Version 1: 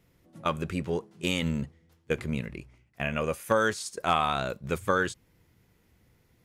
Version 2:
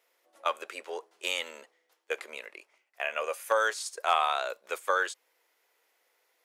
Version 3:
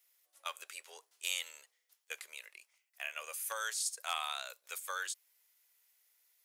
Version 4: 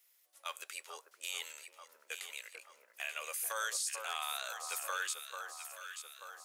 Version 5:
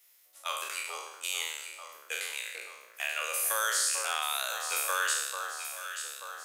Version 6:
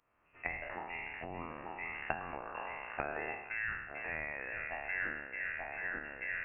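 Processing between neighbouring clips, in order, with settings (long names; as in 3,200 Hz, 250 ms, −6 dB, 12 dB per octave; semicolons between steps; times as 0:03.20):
inverse Chebyshev high-pass filter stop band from 150 Hz, stop band 60 dB
first difference; level +2.5 dB
brickwall limiter −28.5 dBFS, peak gain reduction 9.5 dB; on a send: delay that swaps between a low-pass and a high-pass 442 ms, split 1,400 Hz, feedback 72%, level −5.5 dB; on the sum: level +2.5 dB
peak hold with a decay on every bin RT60 0.95 s; level +5 dB
camcorder AGC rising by 34 dB per second; voice inversion scrambler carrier 3,200 Hz; level −6.5 dB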